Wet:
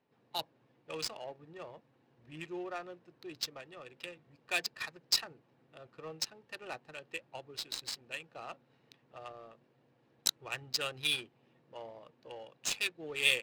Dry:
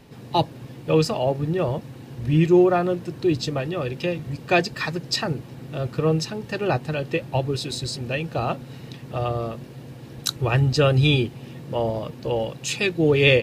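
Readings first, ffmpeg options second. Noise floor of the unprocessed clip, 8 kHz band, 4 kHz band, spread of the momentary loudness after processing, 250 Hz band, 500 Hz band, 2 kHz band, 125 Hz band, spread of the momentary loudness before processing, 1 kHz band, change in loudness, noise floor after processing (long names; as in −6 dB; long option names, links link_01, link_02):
−42 dBFS, −5.0 dB, −7.0 dB, 19 LU, −27.5 dB, −23.5 dB, −10.5 dB, −34.0 dB, 15 LU, −18.5 dB, −13.5 dB, −71 dBFS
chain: -af "aderivative,adynamicsmooth=sensitivity=7.5:basefreq=950"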